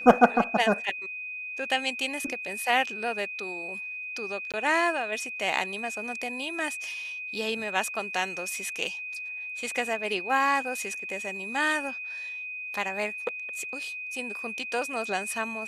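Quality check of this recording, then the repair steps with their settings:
whine 2.5 kHz -34 dBFS
4.52–4.54 s: dropout 17 ms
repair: band-stop 2.5 kHz, Q 30; interpolate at 4.52 s, 17 ms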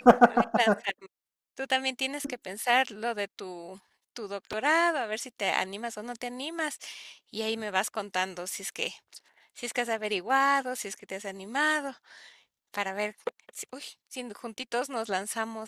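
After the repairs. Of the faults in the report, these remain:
nothing left

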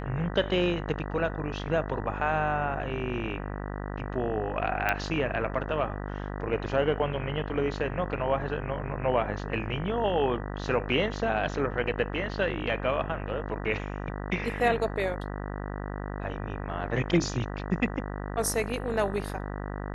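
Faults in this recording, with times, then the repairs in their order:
buzz 50 Hz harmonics 39 -35 dBFS
4.89 s: pop -12 dBFS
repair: de-click; de-hum 50 Hz, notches 39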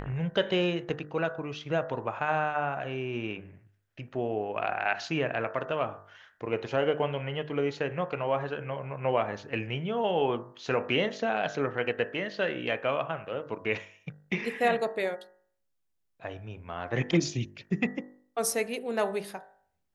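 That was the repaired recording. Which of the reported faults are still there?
nothing left

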